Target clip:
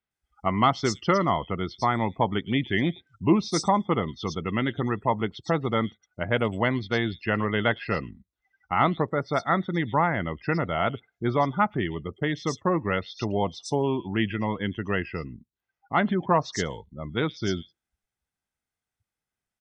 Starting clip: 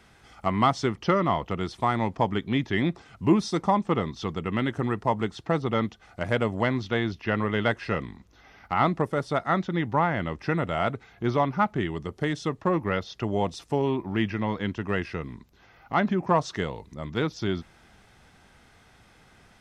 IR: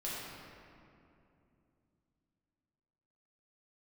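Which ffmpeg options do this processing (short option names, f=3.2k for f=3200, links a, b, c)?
-filter_complex "[0:a]aemphasis=mode=production:type=75kf,afftdn=nr=36:nf=-36,acrossover=split=4300[a][b];[b]adelay=110[c];[a][c]amix=inputs=2:normalize=0"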